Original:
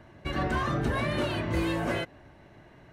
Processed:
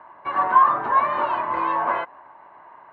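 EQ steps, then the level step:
high-pass with resonance 1,000 Hz, resonance Q 7.4
low-pass filter 2,500 Hz 12 dB per octave
spectral tilt −4.5 dB per octave
+5.0 dB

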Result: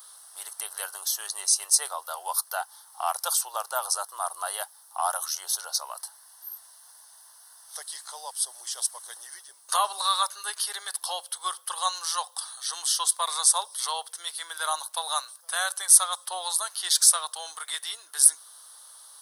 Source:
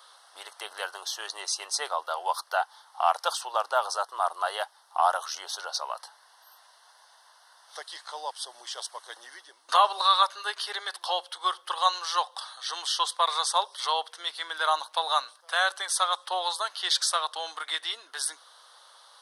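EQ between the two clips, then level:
spectral tilt +6 dB per octave
parametric band 3,300 Hz −15 dB 2.6 octaves
+1.0 dB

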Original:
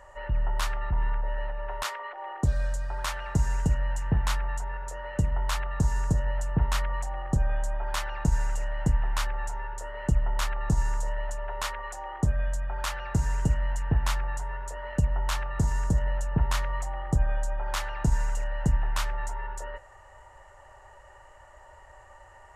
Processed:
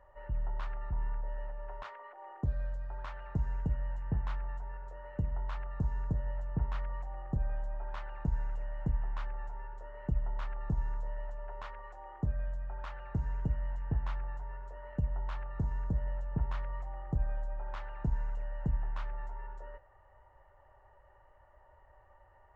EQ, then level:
head-to-tape spacing loss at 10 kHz 40 dB
−7.5 dB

